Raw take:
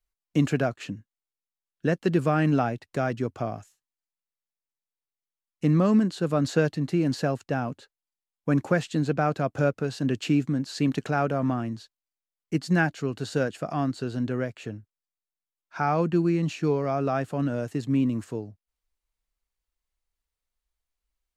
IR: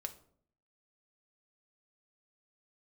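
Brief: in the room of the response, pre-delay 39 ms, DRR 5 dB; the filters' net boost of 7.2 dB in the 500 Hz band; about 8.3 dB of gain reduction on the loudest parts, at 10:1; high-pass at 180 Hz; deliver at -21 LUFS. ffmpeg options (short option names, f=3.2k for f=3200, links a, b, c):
-filter_complex "[0:a]highpass=180,equalizer=f=500:t=o:g=9,acompressor=threshold=-20dB:ratio=10,asplit=2[a][b];[1:a]atrim=start_sample=2205,adelay=39[c];[b][c]afir=irnorm=-1:irlink=0,volume=-3dB[d];[a][d]amix=inputs=2:normalize=0,volume=5dB"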